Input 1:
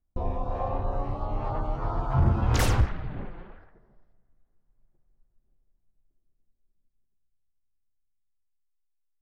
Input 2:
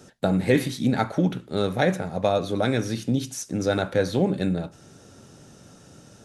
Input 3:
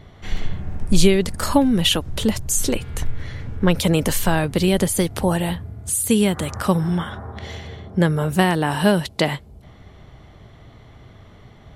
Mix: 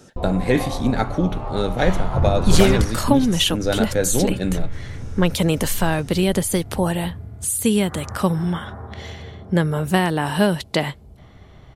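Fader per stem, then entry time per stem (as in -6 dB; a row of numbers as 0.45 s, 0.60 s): +2.0 dB, +1.5 dB, -1.0 dB; 0.00 s, 0.00 s, 1.55 s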